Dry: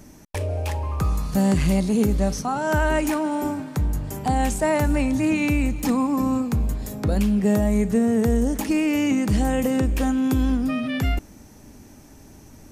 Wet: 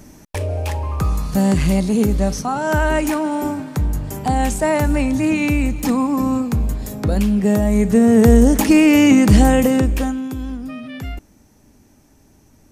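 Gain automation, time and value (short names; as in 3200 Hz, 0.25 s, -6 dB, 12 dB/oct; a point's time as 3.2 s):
7.65 s +3.5 dB
8.29 s +10 dB
9.41 s +10 dB
10 s +3 dB
10.3 s -6 dB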